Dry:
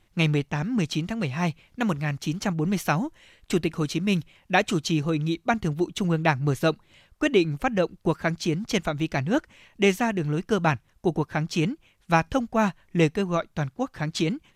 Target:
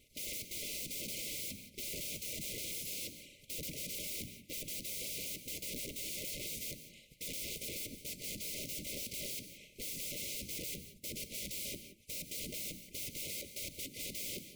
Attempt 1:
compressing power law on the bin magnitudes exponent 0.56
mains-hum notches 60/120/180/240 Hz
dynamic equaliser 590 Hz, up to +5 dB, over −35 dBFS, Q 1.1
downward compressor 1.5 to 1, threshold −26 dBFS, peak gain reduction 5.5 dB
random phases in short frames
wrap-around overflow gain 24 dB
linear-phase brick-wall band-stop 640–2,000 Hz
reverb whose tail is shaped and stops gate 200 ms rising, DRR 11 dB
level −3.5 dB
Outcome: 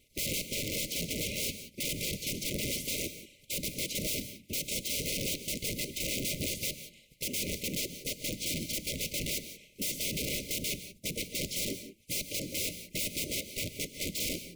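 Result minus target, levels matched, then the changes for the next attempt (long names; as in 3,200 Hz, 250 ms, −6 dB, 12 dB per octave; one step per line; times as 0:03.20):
wrap-around overflow: distortion −16 dB
change: wrap-around overflow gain 33 dB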